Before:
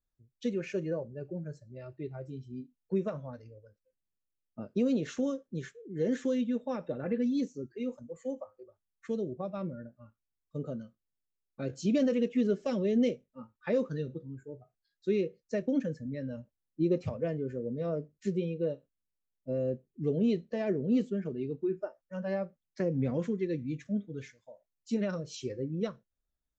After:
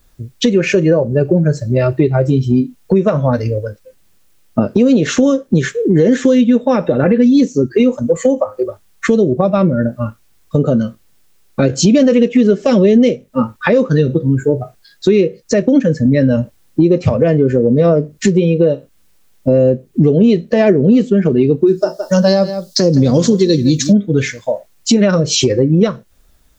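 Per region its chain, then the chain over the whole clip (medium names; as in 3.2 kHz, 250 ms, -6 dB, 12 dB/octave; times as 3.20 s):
21.67–23.93 s: resonant high shelf 3.2 kHz +12 dB, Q 3 + delay 165 ms -16.5 dB
whole clip: compression 6:1, threshold -43 dBFS; loudness maximiser +35.5 dB; trim -1 dB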